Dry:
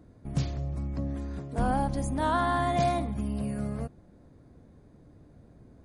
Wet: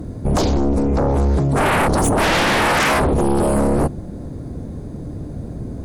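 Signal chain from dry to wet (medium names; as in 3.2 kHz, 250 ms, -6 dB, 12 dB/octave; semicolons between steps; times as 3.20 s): peaking EQ 1.9 kHz -9 dB 2.8 oct; in parallel at -2.5 dB: peak limiter -26 dBFS, peak gain reduction 9.5 dB; on the sum: sine folder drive 17 dB, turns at -13 dBFS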